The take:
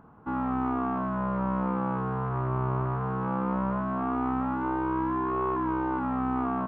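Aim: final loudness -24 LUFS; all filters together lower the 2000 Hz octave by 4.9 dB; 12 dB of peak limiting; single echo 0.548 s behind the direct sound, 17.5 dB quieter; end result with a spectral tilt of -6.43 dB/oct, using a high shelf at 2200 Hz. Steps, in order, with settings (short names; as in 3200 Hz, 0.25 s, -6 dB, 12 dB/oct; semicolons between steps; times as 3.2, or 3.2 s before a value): bell 2000 Hz -3.5 dB; high shelf 2200 Hz -8 dB; limiter -31.5 dBFS; echo 0.548 s -17.5 dB; gain +14.5 dB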